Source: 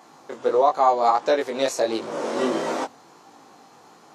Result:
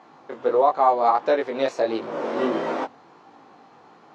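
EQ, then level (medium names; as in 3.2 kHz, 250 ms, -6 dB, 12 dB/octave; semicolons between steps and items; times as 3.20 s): low-pass 3 kHz 12 dB/octave; 0.0 dB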